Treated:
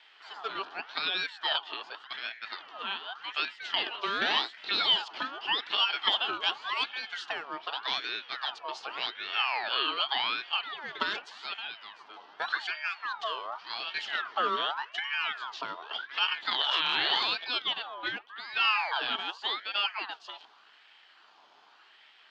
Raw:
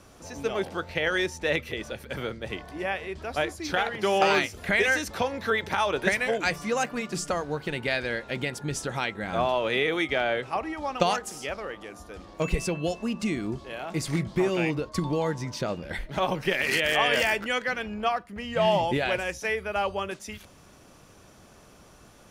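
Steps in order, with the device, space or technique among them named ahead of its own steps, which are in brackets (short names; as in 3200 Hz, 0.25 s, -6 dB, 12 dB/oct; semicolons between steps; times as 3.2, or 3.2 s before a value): 13.58–14.55 bell 3800 Hz -> 470 Hz +10.5 dB 0.87 oct; voice changer toy (ring modulator with a swept carrier 1400 Hz, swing 45%, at 0.86 Hz; speaker cabinet 450–4600 Hz, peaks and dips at 530 Hz -8 dB, 860 Hz +3 dB, 2100 Hz -5 dB, 3100 Hz +10 dB, 4500 Hz +4 dB); gain -3 dB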